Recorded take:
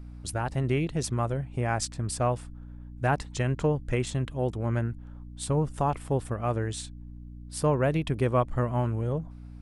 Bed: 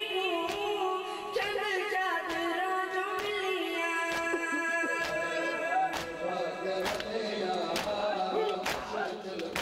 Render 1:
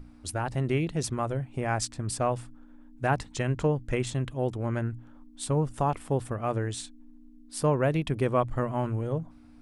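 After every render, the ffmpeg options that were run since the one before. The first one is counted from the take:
ffmpeg -i in.wav -af "bandreject=frequency=60:width_type=h:width=6,bandreject=frequency=120:width_type=h:width=6,bandreject=frequency=180:width_type=h:width=6" out.wav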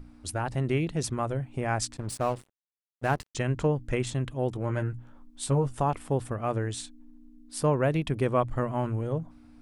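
ffmpeg -i in.wav -filter_complex "[0:a]asettb=1/sr,asplit=3[link_01][link_02][link_03];[link_01]atrim=end=1.974[link_04];[link_02]atrim=start=1.97:end=3.35,asetpts=PTS-STARTPTS,afade=type=in:duration=0.004:curve=qsin,afade=type=out:start_time=1.376:duration=0.004:curve=qsin,aeval=exprs='sgn(val(0))*max(abs(val(0))-0.01,0)':channel_layout=same[link_05];[link_03]atrim=start=3.346[link_06];[link_04][link_05]acrossfade=duration=0.004:curve1=hsin:curve2=qsin[link_07];[link_07][link_06]acrossfade=duration=0.004:curve1=qsin:curve2=hsin,asettb=1/sr,asplit=3[link_08][link_09][link_10];[link_08]atrim=end=4.544[link_11];[link_09]atrim=start=4.54:end=5.8,asetpts=PTS-STARTPTS,afade=type=in:duration=0.004:curve=qsin,afade=type=out:start_time=1.256:duration=0.004:curve=qsin,asplit=2[link_12][link_13];[link_13]adelay=15,volume=-6dB[link_14];[link_12][link_14]amix=inputs=2:normalize=0,atrim=end_sample=55566[link_15];[link_10]atrim=start=5.796[link_16];[link_11][link_15]acrossfade=duration=0.004:curve1=hsin:curve2=qsin[link_17];[link_17][link_16]acrossfade=duration=0.004:curve1=qsin:curve2=hsin" out.wav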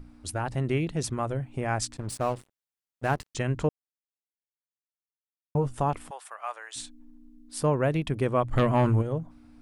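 ffmpeg -i in.wav -filter_complex "[0:a]asplit=3[link_01][link_02][link_03];[link_01]afade=type=out:start_time=6.09:duration=0.02[link_04];[link_02]highpass=frequency=810:width=0.5412,highpass=frequency=810:width=1.3066,afade=type=in:start_time=6.09:duration=0.02,afade=type=out:start_time=6.75:duration=0.02[link_05];[link_03]afade=type=in:start_time=6.75:duration=0.02[link_06];[link_04][link_05][link_06]amix=inputs=3:normalize=0,asplit=3[link_07][link_08][link_09];[link_07]afade=type=out:start_time=8.52:duration=0.02[link_10];[link_08]aeval=exprs='0.158*sin(PI/2*1.78*val(0)/0.158)':channel_layout=same,afade=type=in:start_time=8.52:duration=0.02,afade=type=out:start_time=9.01:duration=0.02[link_11];[link_09]afade=type=in:start_time=9.01:duration=0.02[link_12];[link_10][link_11][link_12]amix=inputs=3:normalize=0,asplit=3[link_13][link_14][link_15];[link_13]atrim=end=3.69,asetpts=PTS-STARTPTS,afade=type=out:start_time=3.686:duration=0.004:curve=hsin[link_16];[link_14]atrim=start=3.69:end=5.55,asetpts=PTS-STARTPTS,volume=0[link_17];[link_15]atrim=start=5.55,asetpts=PTS-STARTPTS,afade=type=in:duration=0.004:curve=hsin[link_18];[link_16][link_17][link_18]concat=n=3:v=0:a=1" out.wav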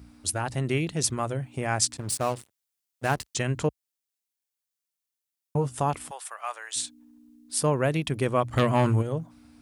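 ffmpeg -i in.wav -af "highpass=frequency=54:width=0.5412,highpass=frequency=54:width=1.3066,highshelf=frequency=3000:gain=10.5" out.wav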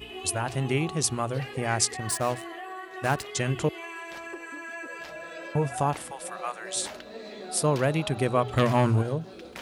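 ffmpeg -i in.wav -i bed.wav -filter_complex "[1:a]volume=-8dB[link_01];[0:a][link_01]amix=inputs=2:normalize=0" out.wav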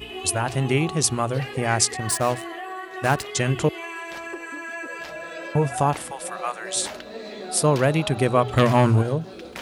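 ffmpeg -i in.wav -af "volume=5dB,alimiter=limit=-1dB:level=0:latency=1" out.wav

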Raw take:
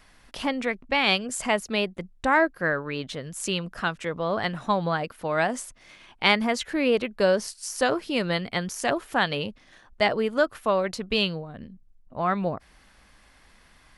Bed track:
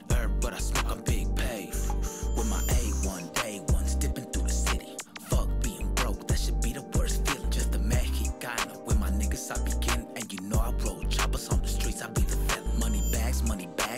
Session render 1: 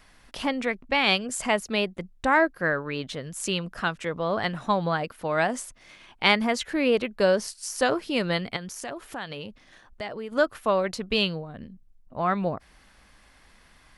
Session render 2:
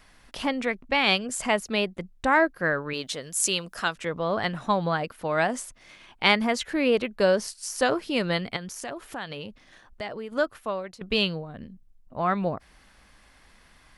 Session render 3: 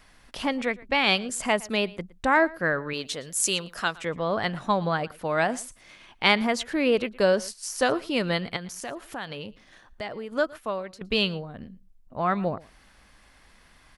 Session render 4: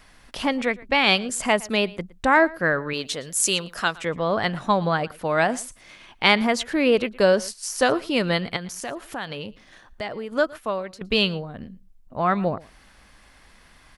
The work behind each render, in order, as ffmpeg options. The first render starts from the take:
ffmpeg -i in.wav -filter_complex "[0:a]asettb=1/sr,asplit=3[link_01][link_02][link_03];[link_01]atrim=end=8.564[link_04];[link_02]atrim=start=8.56:end=10.32,asetpts=PTS-STARTPTS,afade=type=in:duration=0.004:curve=qsin,afade=type=out:start_time=1.756:duration=0.004:curve=qsin,acompressor=threshold=-36dB:ratio=2.5:attack=3.2:release=140:knee=1:detection=peak[link_05];[link_03]atrim=start=10.316[link_06];[link_04][link_05]acrossfade=duration=0.004:curve1=hsin:curve2=qsin[link_07];[link_07][link_06]acrossfade=duration=0.004:curve1=qsin:curve2=hsin" out.wav
ffmpeg -i in.wav -filter_complex "[0:a]asettb=1/sr,asplit=3[link_01][link_02][link_03];[link_01]atrim=end=2.934[link_04];[link_02]atrim=start=2.93:end=3.96,asetpts=PTS-STARTPTS,afade=type=in:duration=0.004:curve=qsin,afade=type=out:start_time=1.026:duration=0.004:curve=qsin,bass=frequency=250:gain=-8,treble=frequency=4000:gain=10[link_05];[link_03]atrim=start=3.956[link_06];[link_04][link_05]acrossfade=duration=0.004:curve1=hsin:curve2=qsin[link_07];[link_07][link_06]acrossfade=duration=0.004:curve1=qsin:curve2=hsin,asplit=2[link_08][link_09];[link_08]atrim=end=11.01,asetpts=PTS-STARTPTS,afade=type=out:start_time=10.13:duration=0.88:silence=0.16788[link_10];[link_09]atrim=start=11.01,asetpts=PTS-STARTPTS,afade=type=in:duration=0.004:curve=hsin:silence=0.16788[link_11];[link_10][link_11]concat=n=2:v=0:a=1" out.wav
ffmpeg -i in.wav -af "aecho=1:1:115:0.0794" out.wav
ffmpeg -i in.wav -af "volume=3.5dB,alimiter=limit=-3dB:level=0:latency=1" out.wav

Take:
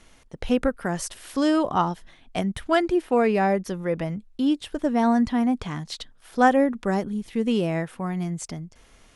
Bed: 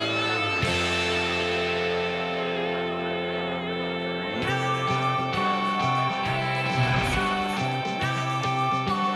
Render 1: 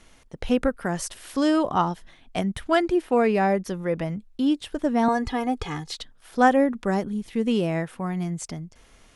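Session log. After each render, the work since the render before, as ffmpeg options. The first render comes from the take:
ffmpeg -i in.wav -filter_complex "[0:a]asettb=1/sr,asplit=3[link_01][link_02][link_03];[link_01]atrim=end=5.084[link_04];[link_02]atrim=start=5.08:end=5.92,asetpts=PTS-STARTPTS,afade=type=in:duration=0.004:curve=qsin,afade=type=out:start_time=0.836:duration=0.004:curve=qsin,aecho=1:1:2.4:0.98,atrim=end_sample=37044[link_05];[link_03]atrim=start=5.916[link_06];[link_04][link_05]acrossfade=duration=0.004:curve1=hsin:curve2=qsin[link_07];[link_07][link_06]acrossfade=duration=0.004:curve1=qsin:curve2=hsin" out.wav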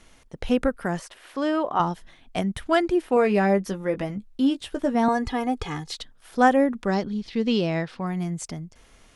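ffmpeg -i in.wav -filter_complex "[0:a]asettb=1/sr,asplit=3[link_01][link_02][link_03];[link_01]atrim=end=0.994[link_04];[link_02]atrim=start=0.99:end=1.8,asetpts=PTS-STARTPTS,afade=type=in:duration=0.004:curve=qsin,afade=type=out:start_time=0.806:duration=0.004:curve=qsin,bass=frequency=250:gain=-14,treble=frequency=4000:gain=-13[link_05];[link_03]atrim=start=1.796[link_06];[link_04][link_05]acrossfade=duration=0.004:curve1=hsin:curve2=qsin[link_07];[link_07][link_06]acrossfade=duration=0.004:curve1=qsin:curve2=hsin,asettb=1/sr,asplit=3[link_08][link_09][link_10];[link_08]atrim=end=3.154[link_11];[link_09]atrim=start=3.15:end=4.95,asetpts=PTS-STARTPTS,afade=type=in:duration=0.004:curve=qsin,afade=type=out:start_time=1.796:duration=0.004:curve=qsin,asplit=2[link_12][link_13];[link_13]adelay=15,volume=-7dB[link_14];[link_12][link_14]amix=inputs=2:normalize=0,atrim=end_sample=79380[link_15];[link_10]atrim=start=4.946[link_16];[link_11][link_15]acrossfade=duration=0.004:curve1=hsin:curve2=qsin[link_17];[link_17][link_16]acrossfade=duration=0.004:curve1=qsin:curve2=hsin,asettb=1/sr,asplit=3[link_18][link_19][link_20];[link_18]atrim=end=6.864[link_21];[link_19]atrim=start=6.86:end=8.07,asetpts=PTS-STARTPTS,afade=type=in:duration=0.004:curve=qsin,afade=type=out:start_time=1.206:duration=0.004:curve=qsin,lowpass=frequency=4600:width_type=q:width=3.3[link_22];[link_20]atrim=start=8.066[link_23];[link_21][link_22]acrossfade=duration=0.004:curve1=hsin:curve2=qsin[link_24];[link_24][link_23]acrossfade=duration=0.004:curve1=qsin:curve2=hsin" out.wav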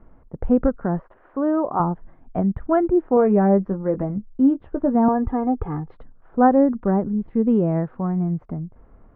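ffmpeg -i in.wav -af "lowpass=frequency=1300:width=0.5412,lowpass=frequency=1300:width=1.3066,lowshelf=frequency=420:gain=7" out.wav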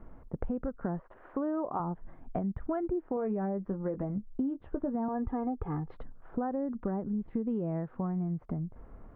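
ffmpeg -i in.wav -af "alimiter=limit=-12.5dB:level=0:latency=1:release=140,acompressor=threshold=-31dB:ratio=5" out.wav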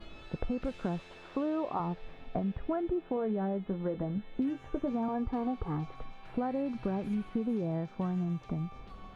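ffmpeg -i in.wav -i bed.wav -filter_complex "[1:a]volume=-28dB[link_01];[0:a][link_01]amix=inputs=2:normalize=0" out.wav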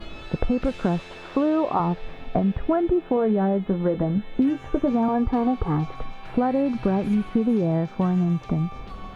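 ffmpeg -i in.wav -af "volume=11dB" out.wav

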